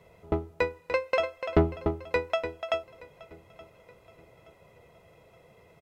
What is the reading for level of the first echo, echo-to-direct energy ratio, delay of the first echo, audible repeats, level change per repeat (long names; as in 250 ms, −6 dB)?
−22.0 dB, −21.5 dB, 873 ms, 2, −8.0 dB